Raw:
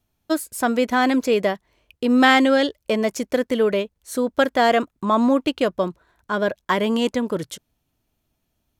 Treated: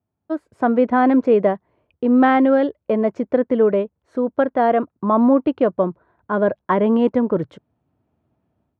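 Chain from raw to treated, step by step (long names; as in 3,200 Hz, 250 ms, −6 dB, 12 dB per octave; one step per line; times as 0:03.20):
low-pass filter 1,100 Hz 12 dB per octave
automatic gain control gain up to 12 dB
high-pass filter 78 Hz 24 dB per octave
level −4 dB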